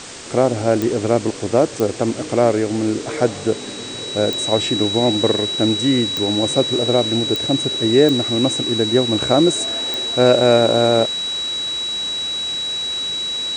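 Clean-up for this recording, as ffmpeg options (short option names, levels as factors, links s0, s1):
-af "adeclick=t=4,bandreject=f=3900:w=30,afwtdn=0.025"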